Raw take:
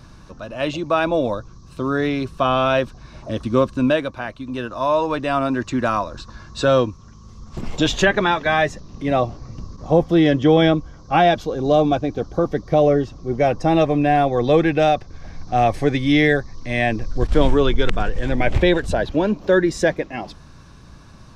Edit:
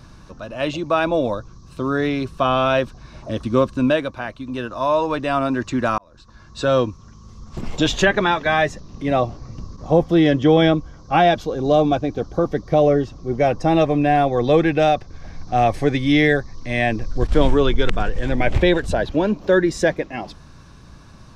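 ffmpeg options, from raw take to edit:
-filter_complex "[0:a]asplit=2[a][b];[a]atrim=end=5.98,asetpts=PTS-STARTPTS,afade=t=out:st=5.976:d=0.004:c=hsin[c];[b]atrim=start=5.98,asetpts=PTS-STARTPTS,afade=t=in:d=0.9[d];[c][d]concat=n=2:v=0:a=1"

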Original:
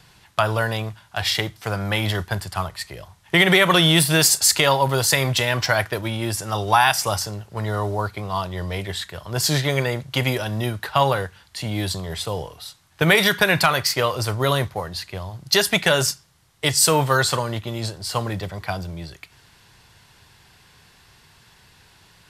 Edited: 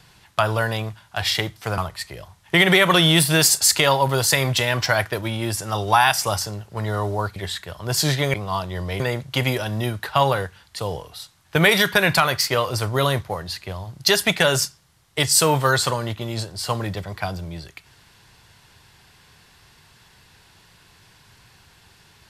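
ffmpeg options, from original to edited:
-filter_complex "[0:a]asplit=6[a][b][c][d][e][f];[a]atrim=end=1.782[g];[b]atrim=start=2.578:end=8.162[h];[c]atrim=start=8.818:end=9.802[i];[d]atrim=start=8.158:end=8.822[j];[e]atrim=start=9.798:end=11.592[k];[f]atrim=start=12.248[l];[g][h]acrossfade=d=0.004:c1=hsin:c2=hsin[m];[m][i]acrossfade=d=0.004:c1=hsin:c2=hsin[n];[n][j]acrossfade=d=0.004:c1=hsin:c2=hsin[o];[o][k]acrossfade=d=0.004:c1=hsin:c2=hsin[p];[p][l]acrossfade=d=0.004:c1=hsin:c2=hsin"

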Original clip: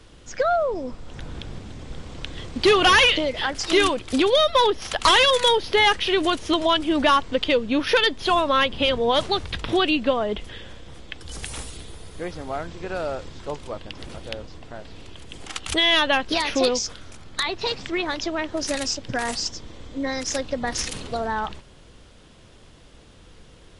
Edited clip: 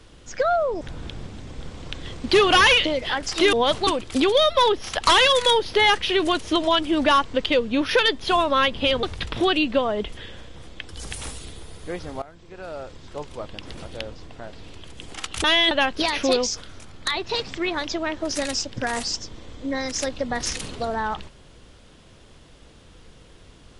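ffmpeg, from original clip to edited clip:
-filter_complex "[0:a]asplit=8[a][b][c][d][e][f][g][h];[a]atrim=end=0.812[i];[b]atrim=start=1.128:end=3.852[j];[c]atrim=start=9.008:end=9.352[k];[d]atrim=start=3.848:end=9.012[l];[e]atrim=start=9.348:end=12.54,asetpts=PTS-STARTPTS,afade=t=out:st=3.188:d=0.004:c=hsin:silence=0.133352[m];[f]atrim=start=12.54:end=15.762,asetpts=PTS-STARTPTS,afade=t=in:d=1.36:silence=0.133352[n];[g]atrim=start=15.758:end=16.032,asetpts=PTS-STARTPTS,areverse[o];[h]atrim=start=16.028[p];[i][j]acrossfade=d=0.004:c1=hsin:c2=hsin[q];[q][k]acrossfade=d=0.004:c1=hsin:c2=hsin[r];[r][l]acrossfade=d=0.004:c1=hsin:c2=hsin[s];[m][n]concat=n=2:v=0:a=1[t];[s][t]acrossfade=d=0.004:c1=hsin:c2=hsin[u];[u][o]acrossfade=d=0.004:c1=hsin:c2=hsin[v];[v][p]acrossfade=d=0.004:c1=hsin:c2=hsin"

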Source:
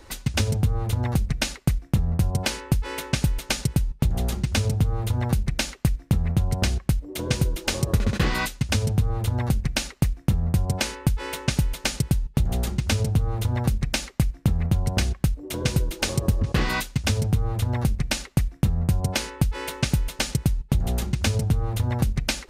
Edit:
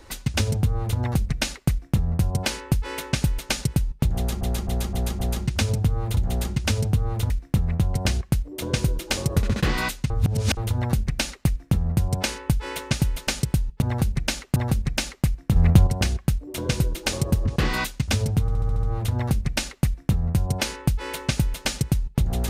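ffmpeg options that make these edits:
-filter_complex "[0:a]asplit=19[a][b][c][d][e][f][g][h][i][j][k][l][m][n][o][p][q][r][s];[a]atrim=end=4.412[t];[b]atrim=start=4.148:end=4.412[u];[c]atrim=start=4.148:end=4.412[v];[d]atrim=start=4.148:end=4.412[w];[e]atrim=start=4.148:end=5.132[x];[f]atrim=start=12.388:end=13.522[y];[g]atrim=start=5.868:end=8.672[z];[h]atrim=start=8.668:end=9.142,asetpts=PTS-STARTPTS,areverse[aa];[i]atrim=start=9.138:end=12.392[ab];[j]atrim=start=5.128:end=5.872[ac];[k]atrim=start=13.518:end=14.522[ad];[l]atrim=start=14.518:end=14.832,asetpts=PTS-STARTPTS,volume=7.5dB[ae];[m]atrim=start=14.828:end=17.442[af];[n]atrim=start=17.368:end=17.442[ag];[o]atrim=start=17.368:end=17.442[ah];[p]atrim=start=17.368:end=17.442[ai];[q]atrim=start=17.368:end=17.442[aj];[r]atrim=start=17.368:end=17.442[ak];[s]atrim=start=17.368[al];[t][u]acrossfade=d=0.004:c1=hsin:c2=hsin[am];[am][v]acrossfade=d=0.004:c1=hsin:c2=hsin[an];[an][w]acrossfade=d=0.004:c1=hsin:c2=hsin[ao];[ao][x]acrossfade=d=0.004:c1=hsin:c2=hsin[ap];[ap][y]acrossfade=d=0.004:c1=hsin:c2=hsin[aq];[aq][z]acrossfade=d=0.004:c1=hsin:c2=hsin[ar];[ar][aa]acrossfade=d=0.004:c1=hsin:c2=hsin[as];[as][ab]acrossfade=d=0.004:c1=hsin:c2=hsin[at];[at][ac]acrossfade=d=0.004:c1=hsin:c2=hsin[au];[au][ad]acrossfade=d=0.004:c1=hsin:c2=hsin[av];[av][ae]acrossfade=d=0.004:c1=hsin:c2=hsin[aw];[aw][af]acrossfade=d=0.004:c1=hsin:c2=hsin[ax];[ax][ag]acrossfade=d=0.004:c1=hsin:c2=hsin[ay];[ay][ah]acrossfade=d=0.004:c1=hsin:c2=hsin[az];[az][ai]acrossfade=d=0.004:c1=hsin:c2=hsin[ba];[ba][aj]acrossfade=d=0.004:c1=hsin:c2=hsin[bb];[bb][ak]acrossfade=d=0.004:c1=hsin:c2=hsin[bc];[bc][al]acrossfade=d=0.004:c1=hsin:c2=hsin"

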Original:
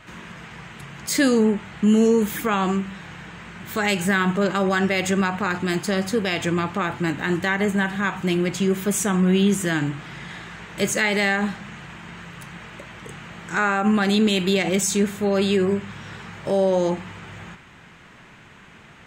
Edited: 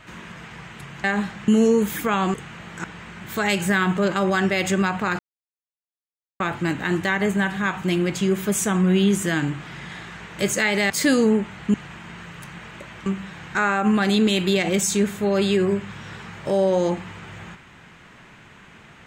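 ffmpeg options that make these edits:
-filter_complex "[0:a]asplit=11[a][b][c][d][e][f][g][h][i][j][k];[a]atrim=end=1.042[l];[b]atrim=start=11.288:end=11.732[m];[c]atrim=start=1.878:end=2.742[n];[d]atrim=start=13.048:end=13.552[o];[e]atrim=start=3.228:end=5.58,asetpts=PTS-STARTPTS,afade=t=out:st=2.348:d=0.004:c=hsin[p];[f]atrim=start=5.58:end=6.79,asetpts=PTS-STARTPTS,volume=0[q];[g]atrim=start=6.79:end=11.292,asetpts=PTS-STARTPTS,afade=t=in:d=0.004:c=hsin[r];[h]atrim=start=1.038:end=1.882[s];[i]atrim=start=11.728:end=13.052[t];[j]atrim=start=2.738:end=3.232[u];[k]atrim=start=13.548[v];[l][m]acrossfade=d=0.004:c1=hsin:c2=hsin[w];[w][n]acrossfade=d=0.004:c1=hsin:c2=hsin[x];[x][o]acrossfade=d=0.004:c1=hsin:c2=hsin[y];[p][q][r]concat=n=3:v=0:a=1[z];[y][z]acrossfade=d=0.004:c1=hsin:c2=hsin[aa];[aa][s]acrossfade=d=0.004:c1=hsin:c2=hsin[ab];[ab][t]acrossfade=d=0.004:c1=hsin:c2=hsin[ac];[ac][u]acrossfade=d=0.004:c1=hsin:c2=hsin[ad];[ad][v]acrossfade=d=0.004:c1=hsin:c2=hsin"

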